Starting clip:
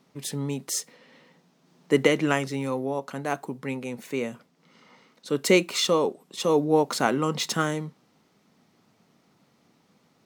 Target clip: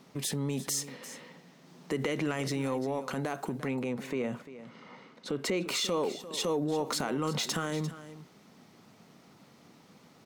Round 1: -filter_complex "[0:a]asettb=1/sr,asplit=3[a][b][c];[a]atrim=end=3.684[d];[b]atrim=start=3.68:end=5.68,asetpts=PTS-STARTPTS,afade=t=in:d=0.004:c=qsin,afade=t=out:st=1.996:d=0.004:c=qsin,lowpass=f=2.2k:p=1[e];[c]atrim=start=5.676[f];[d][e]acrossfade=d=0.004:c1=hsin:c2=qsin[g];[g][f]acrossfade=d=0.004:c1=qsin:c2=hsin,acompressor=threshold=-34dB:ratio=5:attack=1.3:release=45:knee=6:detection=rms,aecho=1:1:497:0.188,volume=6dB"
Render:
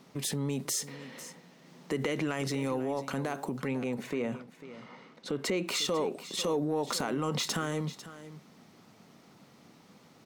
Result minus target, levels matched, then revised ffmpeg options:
echo 0.15 s late
-filter_complex "[0:a]asettb=1/sr,asplit=3[a][b][c];[a]atrim=end=3.684[d];[b]atrim=start=3.68:end=5.68,asetpts=PTS-STARTPTS,afade=t=in:d=0.004:c=qsin,afade=t=out:st=1.996:d=0.004:c=qsin,lowpass=f=2.2k:p=1[e];[c]atrim=start=5.676[f];[d][e]acrossfade=d=0.004:c1=hsin:c2=qsin[g];[g][f]acrossfade=d=0.004:c1=qsin:c2=hsin,acompressor=threshold=-34dB:ratio=5:attack=1.3:release=45:knee=6:detection=rms,aecho=1:1:347:0.188,volume=6dB"

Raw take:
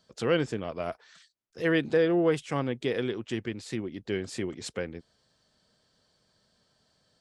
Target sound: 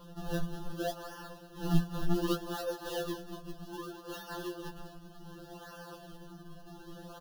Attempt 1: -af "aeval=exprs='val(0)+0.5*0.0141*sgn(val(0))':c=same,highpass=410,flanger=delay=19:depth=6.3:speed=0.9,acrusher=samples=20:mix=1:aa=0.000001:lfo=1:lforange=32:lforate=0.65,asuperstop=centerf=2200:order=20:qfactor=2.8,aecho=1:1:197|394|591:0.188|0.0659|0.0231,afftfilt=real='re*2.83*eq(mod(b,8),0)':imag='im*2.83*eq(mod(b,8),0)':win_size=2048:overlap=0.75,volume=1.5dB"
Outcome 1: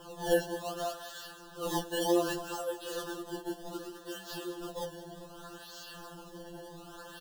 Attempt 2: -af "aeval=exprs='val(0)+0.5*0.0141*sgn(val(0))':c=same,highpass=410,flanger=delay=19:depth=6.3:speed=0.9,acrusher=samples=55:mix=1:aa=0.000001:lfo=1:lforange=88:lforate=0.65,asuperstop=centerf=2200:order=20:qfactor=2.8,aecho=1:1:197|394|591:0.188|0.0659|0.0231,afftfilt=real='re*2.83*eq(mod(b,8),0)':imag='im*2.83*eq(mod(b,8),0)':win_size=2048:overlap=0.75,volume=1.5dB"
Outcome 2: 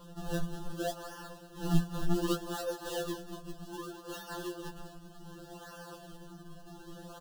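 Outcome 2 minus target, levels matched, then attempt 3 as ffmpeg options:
8000 Hz band +3.5 dB
-af "aeval=exprs='val(0)+0.5*0.0141*sgn(val(0))':c=same,highpass=410,flanger=delay=19:depth=6.3:speed=0.9,acrusher=samples=55:mix=1:aa=0.000001:lfo=1:lforange=88:lforate=0.65,asuperstop=centerf=2200:order=20:qfactor=2.8,equalizer=f=7.9k:t=o:w=0.34:g=-10,aecho=1:1:197|394|591:0.188|0.0659|0.0231,afftfilt=real='re*2.83*eq(mod(b,8),0)':imag='im*2.83*eq(mod(b,8),0)':win_size=2048:overlap=0.75,volume=1.5dB"

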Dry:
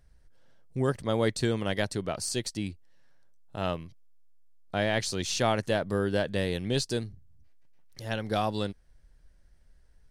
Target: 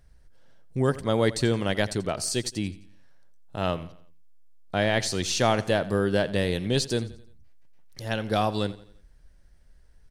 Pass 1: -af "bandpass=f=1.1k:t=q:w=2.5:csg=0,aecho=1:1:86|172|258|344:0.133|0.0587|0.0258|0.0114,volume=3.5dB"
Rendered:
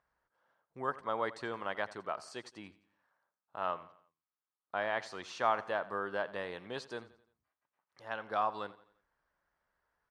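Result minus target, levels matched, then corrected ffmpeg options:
1000 Hz band +7.0 dB
-af "aecho=1:1:86|172|258|344:0.133|0.0587|0.0258|0.0114,volume=3.5dB"

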